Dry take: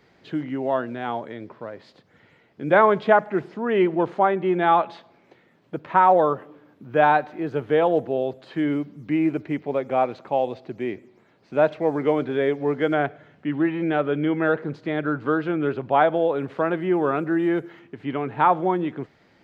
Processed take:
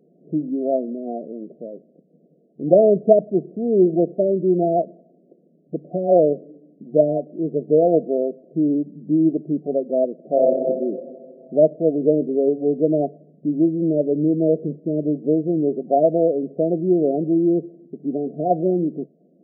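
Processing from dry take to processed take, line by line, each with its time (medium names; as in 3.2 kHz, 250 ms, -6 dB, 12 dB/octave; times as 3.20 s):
10.19–10.59 s: reverb throw, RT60 2.3 s, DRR -1.5 dB
whole clip: local Wiener filter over 41 samples; FFT band-pass 140–730 Hz; trim +5.5 dB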